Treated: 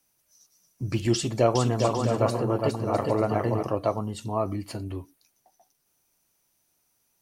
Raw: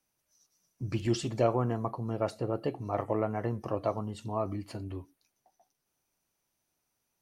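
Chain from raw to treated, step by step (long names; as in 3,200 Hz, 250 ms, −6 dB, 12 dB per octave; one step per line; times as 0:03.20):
high-shelf EQ 5,600 Hz +7.5 dB
0:01.14–0:03.63: bouncing-ball delay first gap 410 ms, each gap 0.6×, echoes 5
level +5 dB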